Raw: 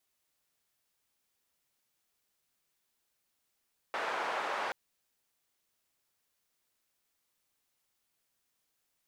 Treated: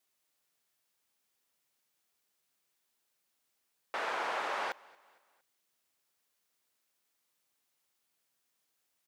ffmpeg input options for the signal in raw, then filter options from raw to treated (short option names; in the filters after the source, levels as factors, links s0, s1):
-f lavfi -i "anoisesrc=c=white:d=0.78:r=44100:seed=1,highpass=f=690,lowpass=f=1100,volume=-14.1dB"
-af "highpass=f=160:p=1,aecho=1:1:230|460|690:0.0631|0.0284|0.0128"